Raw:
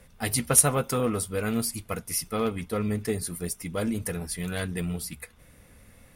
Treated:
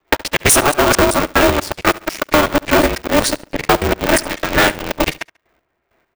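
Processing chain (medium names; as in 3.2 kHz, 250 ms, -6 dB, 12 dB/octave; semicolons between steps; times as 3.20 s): time reversed locally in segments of 123 ms; square tremolo 2.2 Hz, depth 65%, duty 30%; in parallel at -1.5 dB: gain riding within 3 dB 2 s; on the sum: high-pass 110 Hz 12 dB/octave; three-band isolator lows -15 dB, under 330 Hz, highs -17 dB, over 7.8 kHz; level-controlled noise filter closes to 1.7 kHz, open at -22.5 dBFS; dynamic bell 4.7 kHz, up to -6 dB, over -52 dBFS, Q 3.2; waveshaping leveller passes 5; on a send: feedback delay 70 ms, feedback 30%, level -21.5 dB; on the sum: compression, threshold -14 dBFS, peak gain reduction 5.5 dB; polarity switched at an audio rate 150 Hz; trim +4.5 dB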